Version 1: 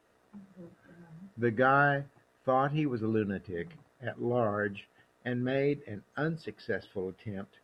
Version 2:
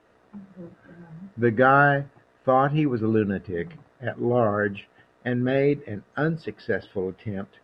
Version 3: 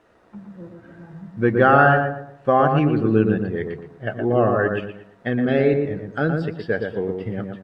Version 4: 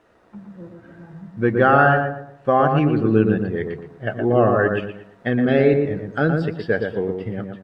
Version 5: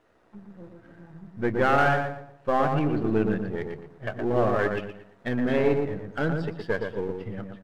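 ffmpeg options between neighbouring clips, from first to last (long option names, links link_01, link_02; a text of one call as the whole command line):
ffmpeg -i in.wav -af "aemphasis=mode=reproduction:type=50fm,volume=7.5dB" out.wav
ffmpeg -i in.wav -filter_complex "[0:a]asplit=2[link_01][link_02];[link_02]adelay=118,lowpass=frequency=1400:poles=1,volume=-3.5dB,asplit=2[link_03][link_04];[link_04]adelay=118,lowpass=frequency=1400:poles=1,volume=0.37,asplit=2[link_05][link_06];[link_06]adelay=118,lowpass=frequency=1400:poles=1,volume=0.37,asplit=2[link_07][link_08];[link_08]adelay=118,lowpass=frequency=1400:poles=1,volume=0.37,asplit=2[link_09][link_10];[link_10]adelay=118,lowpass=frequency=1400:poles=1,volume=0.37[link_11];[link_01][link_03][link_05][link_07][link_09][link_11]amix=inputs=6:normalize=0,volume=2.5dB" out.wav
ffmpeg -i in.wav -af "dynaudnorm=framelen=180:gausssize=9:maxgain=3dB" out.wav
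ffmpeg -i in.wav -af "aeval=exprs='if(lt(val(0),0),0.447*val(0),val(0))':channel_layout=same,volume=-4dB" out.wav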